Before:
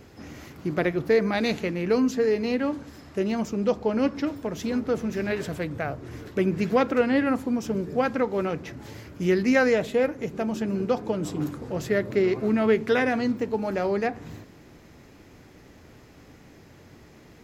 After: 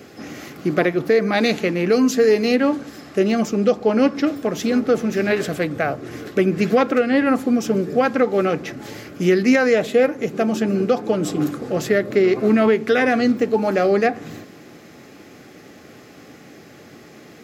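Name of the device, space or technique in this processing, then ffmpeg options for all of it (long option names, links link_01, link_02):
PA system with an anti-feedback notch: -filter_complex "[0:a]asettb=1/sr,asplit=3[link_01][link_02][link_03];[link_01]atrim=end=1.924[link_04];[link_02]atrim=start=1.92:end=2.56,asetpts=PTS-STARTPTS,afade=type=in:duration=0.004:curve=qsin,afade=type=out:start_time=0.636:duration=0.004:curve=qsin,highshelf=frequency=5100:gain=7.5[link_05];[link_03]atrim=start=2.556[link_06];[link_04][link_05]acrossfade=duration=0.004:curve1=hsin:curve2=qsin[link_07];[link_07][link_06]acrossfade=duration=0.004:curve1=qsin:curve2=hsin,highpass=180,asuperstop=centerf=950:order=20:qfactor=6.9,alimiter=limit=-15.5dB:level=0:latency=1:release=322,volume=9dB"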